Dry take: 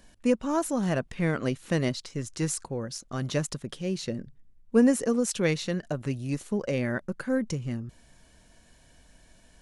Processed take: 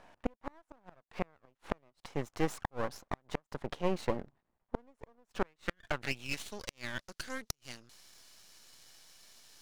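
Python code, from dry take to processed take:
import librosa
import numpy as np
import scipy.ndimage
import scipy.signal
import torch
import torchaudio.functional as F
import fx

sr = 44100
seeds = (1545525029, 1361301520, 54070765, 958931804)

y = fx.filter_sweep_bandpass(x, sr, from_hz=840.0, to_hz=4900.0, start_s=5.31, end_s=6.68, q=2.1)
y = fx.gate_flip(y, sr, shuts_db=-30.0, range_db=-40)
y = np.maximum(y, 0.0)
y = y * 10.0 ** (15.0 / 20.0)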